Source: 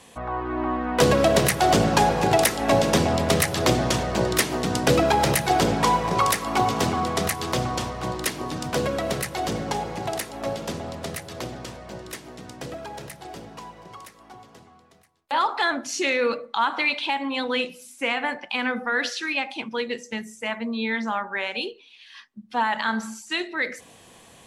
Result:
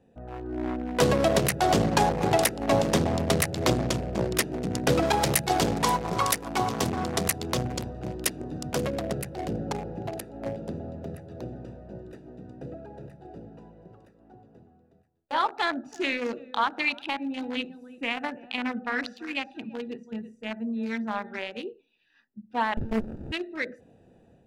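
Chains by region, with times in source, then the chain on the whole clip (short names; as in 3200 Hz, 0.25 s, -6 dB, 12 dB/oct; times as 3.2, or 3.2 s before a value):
5.02–9.02 high shelf 3200 Hz +5 dB + echo 0.532 s -15.5 dB
15.5–21.39 bell 510 Hz -8 dB 0.25 oct + echo 0.335 s -13.5 dB
22.77–23.32 resonant high shelf 6000 Hz +10 dB, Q 3 + sample leveller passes 3 + running maximum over 65 samples
whole clip: Wiener smoothing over 41 samples; AGC gain up to 4.5 dB; gain -5.5 dB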